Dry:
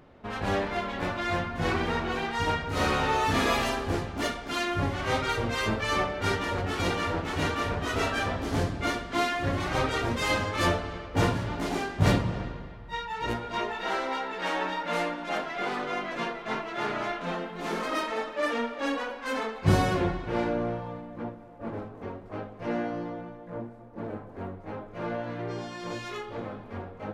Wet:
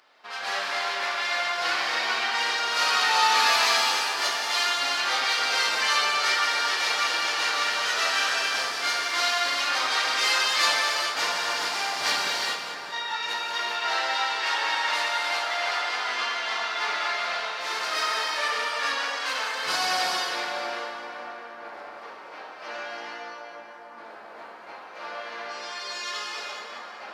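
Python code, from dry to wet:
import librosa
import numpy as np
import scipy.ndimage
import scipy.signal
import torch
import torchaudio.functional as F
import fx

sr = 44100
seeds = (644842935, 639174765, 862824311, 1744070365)

p1 = scipy.signal.sosfilt(scipy.signal.butter(2, 1100.0, 'highpass', fs=sr, output='sos'), x)
p2 = fx.peak_eq(p1, sr, hz=4800.0, db=10.0, octaves=0.63)
p3 = p2 + fx.echo_split(p2, sr, split_hz=2000.0, low_ms=622, high_ms=198, feedback_pct=52, wet_db=-10.0, dry=0)
p4 = fx.rev_gated(p3, sr, seeds[0], gate_ms=460, shape='flat', drr_db=-3.0)
y = p4 * librosa.db_to_amplitude(2.0)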